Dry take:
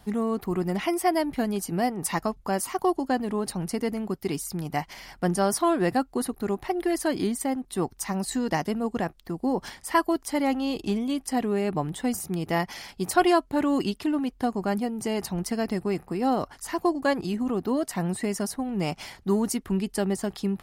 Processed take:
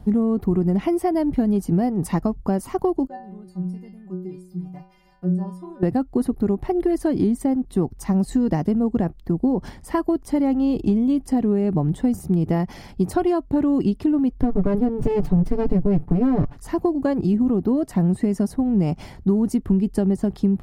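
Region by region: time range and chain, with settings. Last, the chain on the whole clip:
3.07–5.83 s: treble shelf 2.5 kHz -8.5 dB + inharmonic resonator 180 Hz, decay 0.61 s, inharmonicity 0.008 + tape noise reduction on one side only encoder only
14.41–16.57 s: comb filter that takes the minimum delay 6.9 ms + tone controls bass +6 dB, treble -7 dB
whole clip: tilt shelf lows +8.5 dB, about 800 Hz; compression, threshold -20 dBFS; bass shelf 260 Hz +6 dB; trim +1.5 dB

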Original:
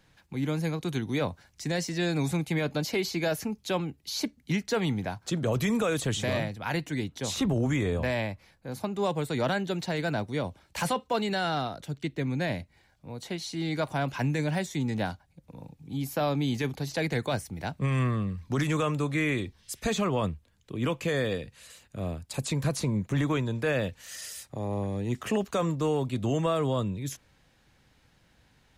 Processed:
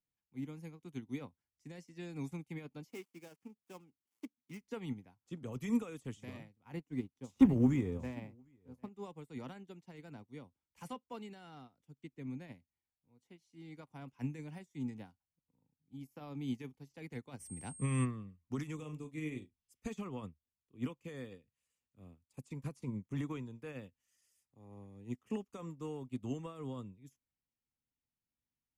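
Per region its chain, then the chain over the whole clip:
2.90–4.61 s: dead-time distortion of 0.12 ms + high-pass 210 Hz 6 dB/octave
6.53–8.89 s: companding laws mixed up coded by A + tilt shelf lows +4 dB, about 1.3 kHz + delay 752 ms -13.5 dB
17.39–18.04 s: whistle 8.5 kHz -38 dBFS + level flattener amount 50%
18.75–19.62 s: peaking EQ 1.4 kHz -10.5 dB 0.86 oct + doubling 39 ms -7.5 dB
whole clip: graphic EQ with 31 bands 250 Hz +6 dB, 630 Hz -10 dB, 1.6 kHz -8 dB, 4 kHz -11 dB; upward expansion 2.5:1, over -39 dBFS; trim -1 dB

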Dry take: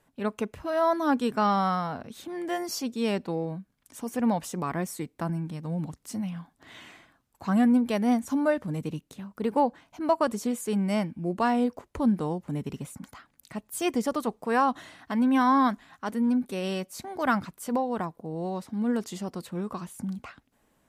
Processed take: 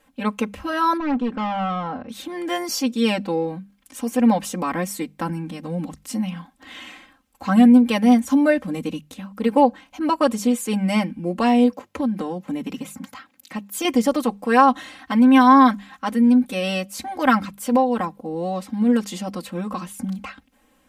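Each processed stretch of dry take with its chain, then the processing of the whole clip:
0.97–2.09 s: hard clipper -27 dBFS + tape spacing loss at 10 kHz 30 dB
11.72–13.85 s: high-pass 98 Hz 24 dB/octave + peaking EQ 8.9 kHz -6.5 dB 0.21 oct + compression 12:1, threshold -27 dBFS
whole clip: peaking EQ 2.7 kHz +4.5 dB 0.88 oct; hum notches 50/100/150/200 Hz; comb 3.8 ms, depth 99%; trim +4 dB

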